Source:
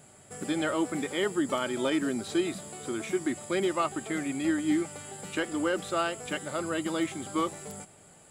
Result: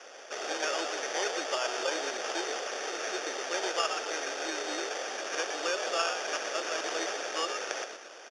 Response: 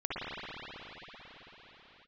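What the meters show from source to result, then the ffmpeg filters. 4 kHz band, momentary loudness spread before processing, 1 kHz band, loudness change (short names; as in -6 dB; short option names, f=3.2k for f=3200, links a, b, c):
+5.0 dB, 9 LU, +1.0 dB, -2.0 dB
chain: -filter_complex "[0:a]aemphasis=mode=production:type=riaa,asplit=5[a][b][c][d][e];[b]adelay=119,afreqshift=93,volume=-7dB[f];[c]adelay=238,afreqshift=186,volume=-15.9dB[g];[d]adelay=357,afreqshift=279,volume=-24.7dB[h];[e]adelay=476,afreqshift=372,volume=-33.6dB[i];[a][f][g][h][i]amix=inputs=5:normalize=0,acrusher=samples=11:mix=1:aa=0.000001,highpass=f=440:w=0.5412,highpass=f=440:w=1.3066,equalizer=f=1k:t=q:w=4:g=-9,equalizer=f=2.1k:t=q:w=4:g=-9,equalizer=f=3.9k:t=q:w=4:g=5,equalizer=f=5.7k:t=q:w=4:g=4,lowpass=f=6.9k:w=0.5412,lowpass=f=6.9k:w=1.3066"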